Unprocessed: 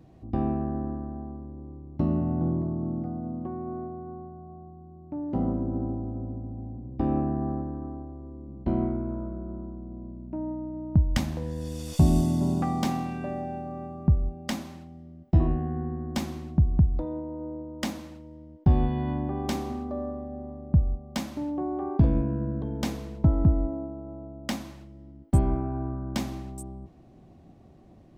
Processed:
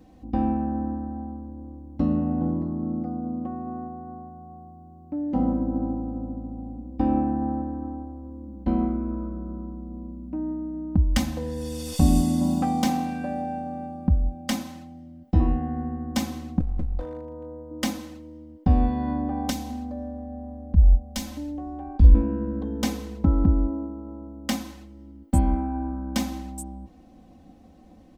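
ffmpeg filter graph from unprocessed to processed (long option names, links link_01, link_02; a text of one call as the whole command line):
ffmpeg -i in.wav -filter_complex "[0:a]asettb=1/sr,asplit=3[link_01][link_02][link_03];[link_01]atrim=end=16.604[link_04];[link_02]atrim=start=16.6:end=17.71,asetpts=PTS-STARTPTS,afade=type=in:duration=0.004:curve=qsin,afade=type=out:start_time=1.106:duration=0.004:curve=qsin,equalizer=frequency=290:width_type=o:width=0.46:gain=-13.5,aeval=exprs='clip(val(0),-1,0.0211)':channel_layout=same,acompressor=threshold=-25dB:ratio=3:attack=3.2:release=140:knee=1:detection=peak[link_05];[link_03]atrim=start=17.706[link_06];[link_04][link_05]acrossfade=duration=0.004:curve1=hsin:curve2=qsin[link_07];[link_07][link_06]acrossfade=duration=0.004:curve1=qsin:curve2=hsin,asettb=1/sr,asplit=3[link_08][link_09][link_10];[link_08]atrim=end=19.504[link_11];[link_09]atrim=start=19.5:end=22.15,asetpts=PTS-STARTPTS,afade=type=in:duration=0.004:curve=qsin,afade=type=out:start_time=2.646:duration=0.004:curve=qsin,bandreject=frequency=1200:width=10,acrossover=split=190|3000[link_12][link_13][link_14];[link_13]acompressor=threshold=-41dB:ratio=2:attack=3.2:release=140:knee=2.83:detection=peak[link_15];[link_12][link_15][link_14]amix=inputs=3:normalize=0,asubboost=boost=9.5:cutoff=55[link_16];[link_10]atrim=start=22.146[link_17];[link_11][link_16]acrossfade=duration=0.004:curve1=hsin:curve2=qsin[link_18];[link_18][link_17]acrossfade=duration=0.004:curve1=qsin:curve2=hsin,highshelf=frequency=4400:gain=5,aecho=1:1:3.9:0.89" out.wav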